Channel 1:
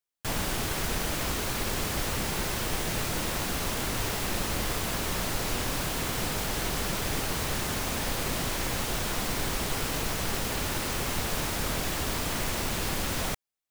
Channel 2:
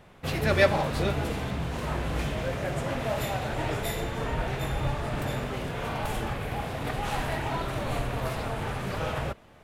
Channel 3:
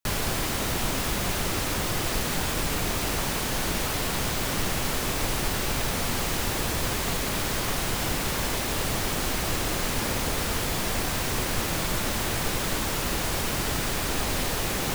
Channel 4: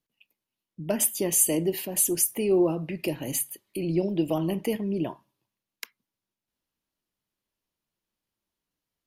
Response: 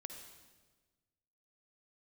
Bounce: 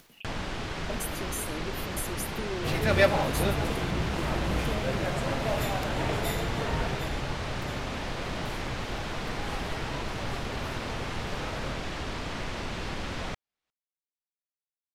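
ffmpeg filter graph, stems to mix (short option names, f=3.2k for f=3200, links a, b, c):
-filter_complex "[0:a]lowpass=4k,volume=-3dB[a];[1:a]adelay=2400,volume=-0.5dB,afade=t=out:st=6.76:d=0.51:silence=0.398107[b];[3:a]acompressor=threshold=-26dB:ratio=6,volume=-8dB[c];[a][b][c]amix=inputs=3:normalize=0,acompressor=mode=upward:threshold=-32dB:ratio=2.5"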